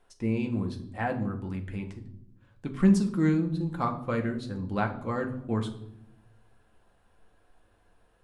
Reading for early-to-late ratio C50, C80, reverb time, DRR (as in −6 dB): 12.0 dB, 14.5 dB, 0.75 s, 2.5 dB